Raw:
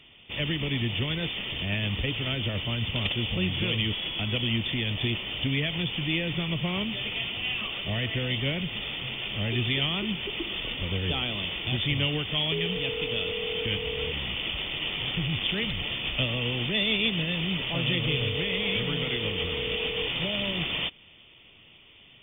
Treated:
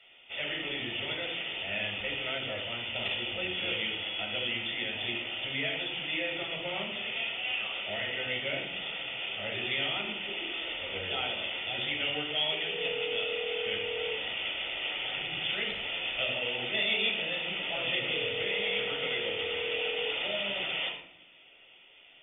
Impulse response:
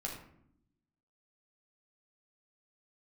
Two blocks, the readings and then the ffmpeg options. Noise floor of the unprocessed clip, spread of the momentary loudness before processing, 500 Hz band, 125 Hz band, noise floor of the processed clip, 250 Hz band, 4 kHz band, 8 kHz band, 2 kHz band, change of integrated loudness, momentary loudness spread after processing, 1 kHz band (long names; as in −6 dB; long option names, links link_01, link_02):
−54 dBFS, 4 LU, −2.0 dB, −18.5 dB, −56 dBFS, −12.5 dB, −3.5 dB, can't be measured, −1.0 dB, −3.5 dB, 5 LU, −0.5 dB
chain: -filter_complex "[0:a]acrossover=split=410 4000:gain=0.0631 1 0.224[link_01][link_02][link_03];[link_01][link_02][link_03]amix=inputs=3:normalize=0,bandreject=frequency=1100:width=5.2[link_04];[1:a]atrim=start_sample=2205[link_05];[link_04][link_05]afir=irnorm=-1:irlink=0"